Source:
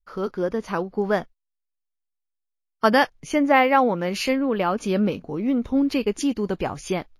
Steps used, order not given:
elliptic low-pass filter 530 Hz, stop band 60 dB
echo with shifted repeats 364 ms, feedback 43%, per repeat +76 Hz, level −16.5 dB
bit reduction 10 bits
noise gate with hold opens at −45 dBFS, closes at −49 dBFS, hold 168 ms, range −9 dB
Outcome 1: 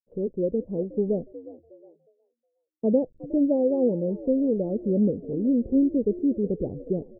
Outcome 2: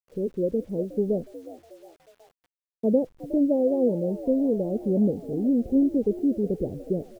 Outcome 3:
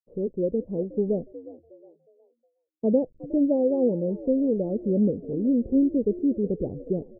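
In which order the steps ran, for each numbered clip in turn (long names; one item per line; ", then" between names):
bit reduction, then echo with shifted repeats, then elliptic low-pass filter, then noise gate with hold
elliptic low-pass filter, then echo with shifted repeats, then noise gate with hold, then bit reduction
bit reduction, then echo with shifted repeats, then noise gate with hold, then elliptic low-pass filter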